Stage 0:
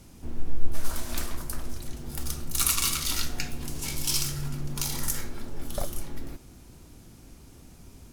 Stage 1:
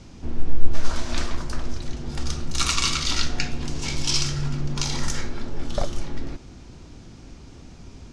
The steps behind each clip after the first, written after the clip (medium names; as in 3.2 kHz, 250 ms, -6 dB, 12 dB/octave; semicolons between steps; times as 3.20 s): low-pass 6.3 kHz 24 dB/octave; trim +6.5 dB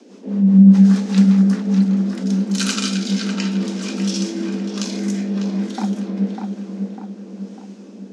rotary cabinet horn 5 Hz, later 1 Hz, at 1.53 s; filtered feedback delay 599 ms, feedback 51%, low-pass 2.2 kHz, level -5 dB; frequency shift +190 Hz; trim +1 dB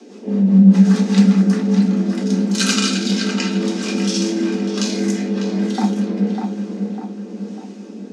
reverberation RT60 0.35 s, pre-delay 3 ms, DRR 2.5 dB; trim +2 dB